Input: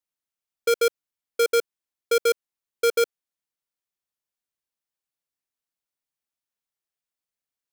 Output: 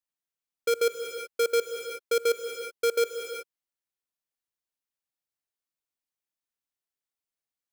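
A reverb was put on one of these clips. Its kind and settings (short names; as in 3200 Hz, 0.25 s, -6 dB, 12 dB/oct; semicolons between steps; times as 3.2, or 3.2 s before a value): non-linear reverb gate 0.4 s rising, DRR 6.5 dB; gain -4.5 dB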